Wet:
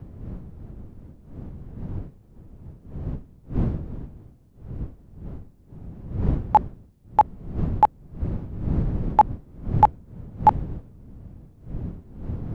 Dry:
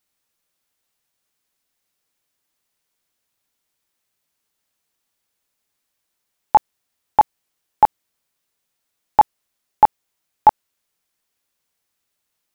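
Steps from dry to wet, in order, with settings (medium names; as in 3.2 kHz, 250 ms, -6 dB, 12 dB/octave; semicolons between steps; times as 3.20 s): wind noise 140 Hz -27 dBFS; trim -3.5 dB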